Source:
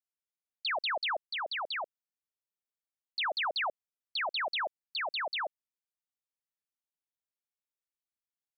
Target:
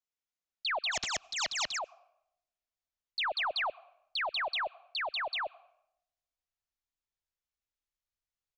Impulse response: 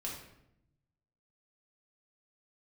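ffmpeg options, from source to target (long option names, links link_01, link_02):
-filter_complex "[0:a]asubboost=boost=8.5:cutoff=77,asplit=3[link_01][link_02][link_03];[link_01]afade=type=out:start_time=0.91:duration=0.02[link_04];[link_02]aeval=exprs='0.0398*sin(PI/2*7.94*val(0)/0.0398)':channel_layout=same,afade=type=in:start_time=0.91:duration=0.02,afade=type=out:start_time=1.77:duration=0.02[link_05];[link_03]afade=type=in:start_time=1.77:duration=0.02[link_06];[link_04][link_05][link_06]amix=inputs=3:normalize=0,aresample=16000,aresample=44100,aeval=exprs='0.112*(cos(1*acos(clip(val(0)/0.112,-1,1)))-cos(1*PI/2))+0.00501*(cos(2*acos(clip(val(0)/0.112,-1,1)))-cos(2*PI/2))':channel_layout=same,asplit=2[link_07][link_08];[link_08]asplit=3[link_09][link_10][link_11];[link_09]bandpass=frequency=730:width_type=q:width=8,volume=0dB[link_12];[link_10]bandpass=frequency=1090:width_type=q:width=8,volume=-6dB[link_13];[link_11]bandpass=frequency=2440:width_type=q:width=8,volume=-9dB[link_14];[link_12][link_13][link_14]amix=inputs=3:normalize=0[link_15];[1:a]atrim=start_sample=2205,highshelf=frequency=3700:gain=11,adelay=94[link_16];[link_15][link_16]afir=irnorm=-1:irlink=0,volume=-15dB[link_17];[link_07][link_17]amix=inputs=2:normalize=0"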